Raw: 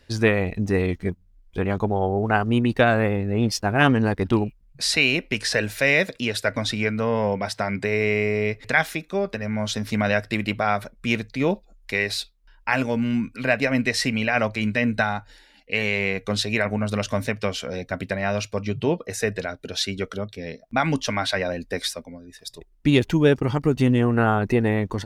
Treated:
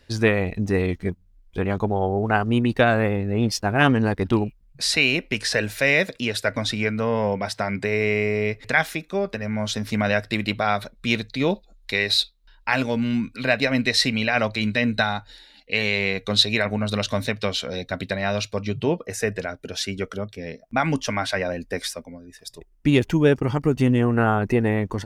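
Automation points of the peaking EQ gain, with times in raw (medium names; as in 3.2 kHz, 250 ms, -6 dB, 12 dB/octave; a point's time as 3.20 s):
peaking EQ 3.9 kHz 0.38 oct
10.05 s +1 dB
10.70 s +11.5 dB
18.12 s +11.5 dB
18.77 s +4.5 dB
18.98 s -5 dB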